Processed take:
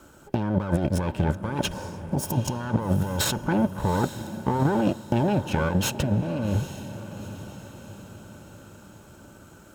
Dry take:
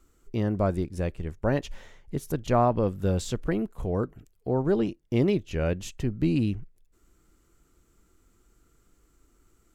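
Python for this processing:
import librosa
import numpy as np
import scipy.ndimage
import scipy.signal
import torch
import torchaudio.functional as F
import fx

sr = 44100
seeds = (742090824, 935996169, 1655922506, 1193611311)

y = fx.lower_of_two(x, sr, delay_ms=0.74)
y = fx.spec_box(y, sr, start_s=1.72, length_s=0.89, low_hz=1100.0, high_hz=4400.0, gain_db=-12)
y = fx.level_steps(y, sr, step_db=10, at=(3.42, 5.7))
y = fx.small_body(y, sr, hz=(580.0, 880.0, 1500.0, 3200.0), ring_ms=30, db=13)
y = fx.over_compress(y, sr, threshold_db=-33.0, ratio=-1.0)
y = scipy.signal.sosfilt(scipy.signal.butter(2, 120.0, 'highpass', fs=sr, output='sos'), y)
y = fx.low_shelf(y, sr, hz=270.0, db=6.5)
y = fx.echo_diffused(y, sr, ms=801, feedback_pct=51, wet_db=-13)
y = F.gain(torch.from_numpy(y), 7.0).numpy()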